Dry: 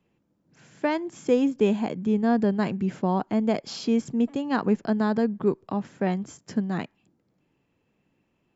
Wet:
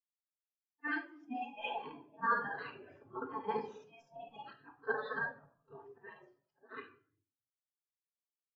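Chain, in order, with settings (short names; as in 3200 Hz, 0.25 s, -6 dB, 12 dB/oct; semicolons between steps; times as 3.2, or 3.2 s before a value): short-time reversal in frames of 0.143 s; auto swell 0.204 s; resonant low shelf 460 Hz -7 dB, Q 3; notch 2200 Hz, Q 10; spectral gate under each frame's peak -15 dB weak; steep low-pass 6700 Hz; shoebox room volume 810 m³, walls mixed, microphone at 1.6 m; spectral expander 2.5:1; gain +4.5 dB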